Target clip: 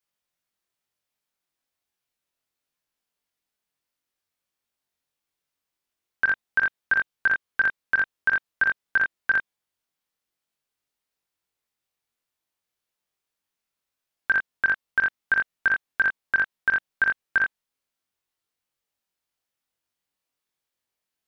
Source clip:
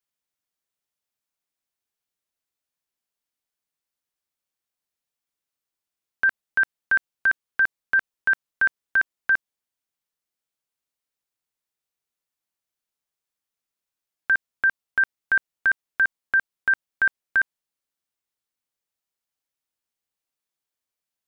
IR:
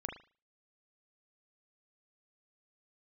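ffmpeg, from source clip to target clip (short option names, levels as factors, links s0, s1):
-filter_complex "[1:a]atrim=start_sample=2205,afade=t=out:st=0.13:d=0.01,atrim=end_sample=6174,asetrate=74970,aresample=44100[s0];[0:a][s0]afir=irnorm=-1:irlink=0,volume=2.66"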